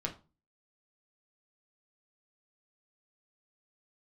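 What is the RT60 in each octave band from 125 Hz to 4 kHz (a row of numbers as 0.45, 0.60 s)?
0.50, 0.40, 0.30, 0.30, 0.25, 0.25 s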